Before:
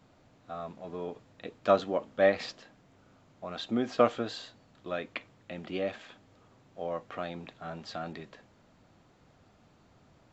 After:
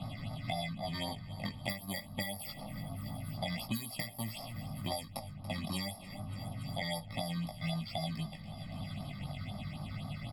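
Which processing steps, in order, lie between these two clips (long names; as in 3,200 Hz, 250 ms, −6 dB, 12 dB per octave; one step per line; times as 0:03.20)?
samples in bit-reversed order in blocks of 32 samples
low-pass that shuts in the quiet parts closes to 1,400 Hz, open at −26 dBFS
high-shelf EQ 3,000 Hz +8 dB
comb filter 1.5 ms, depth 72%
downward compressor 6 to 1, threshold −35 dBFS, peak gain reduction 20 dB
chorus effect 0.27 Hz, delay 18 ms, depth 2.3 ms
phaser with its sweep stopped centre 1,700 Hz, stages 6
all-pass phaser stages 6, 3.9 Hz, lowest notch 720–2,800 Hz
repeating echo 284 ms, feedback 43%, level −21.5 dB
multiband upward and downward compressor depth 100%
level +12.5 dB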